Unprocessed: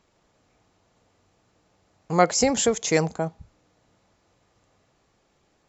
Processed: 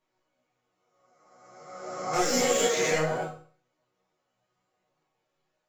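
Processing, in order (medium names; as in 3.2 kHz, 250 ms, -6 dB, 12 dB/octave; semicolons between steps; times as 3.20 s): reverse spectral sustain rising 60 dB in 1.75 s; 2.13–3.28 s: waveshaping leveller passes 3; tone controls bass -8 dB, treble -5 dB; chord resonator B2 major, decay 0.46 s; chorus voices 6, 0.83 Hz, delay 11 ms, depth 3.9 ms; trim +5.5 dB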